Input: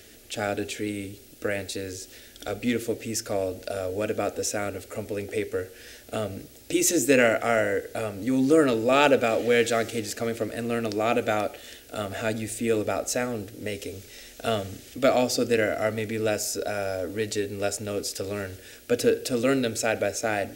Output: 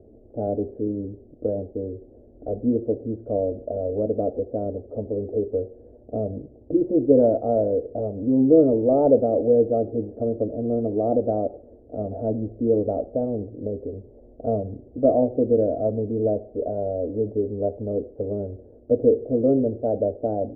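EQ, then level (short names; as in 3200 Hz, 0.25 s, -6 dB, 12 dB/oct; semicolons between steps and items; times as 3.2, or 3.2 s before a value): steep low-pass 670 Hz 36 dB/oct; +4.5 dB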